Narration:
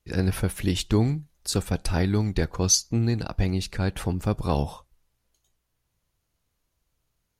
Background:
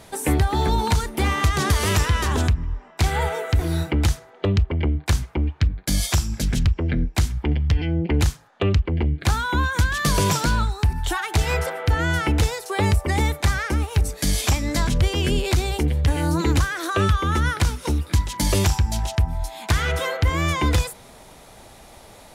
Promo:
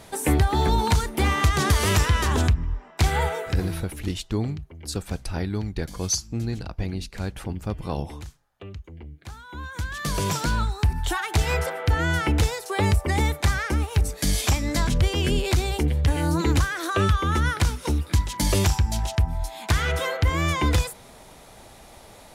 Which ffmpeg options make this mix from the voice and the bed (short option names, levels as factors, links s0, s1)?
-filter_complex "[0:a]adelay=3400,volume=0.596[s0];[1:a]volume=7.5,afade=t=out:st=3.19:d=0.76:silence=0.112202,afade=t=in:st=9.46:d=1.37:silence=0.125893[s1];[s0][s1]amix=inputs=2:normalize=0"